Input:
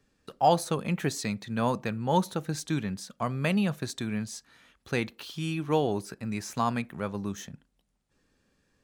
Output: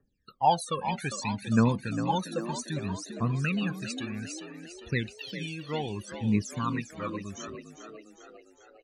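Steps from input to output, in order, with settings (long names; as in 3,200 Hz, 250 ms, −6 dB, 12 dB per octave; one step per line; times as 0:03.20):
noise reduction from a noise print of the clip's start 10 dB
phase shifter 0.63 Hz, delay 1.9 ms, feedback 79%
spectral peaks only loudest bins 64
on a send: echo with shifted repeats 402 ms, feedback 57%, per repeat +57 Hz, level −10 dB
on the sum: level −4 dB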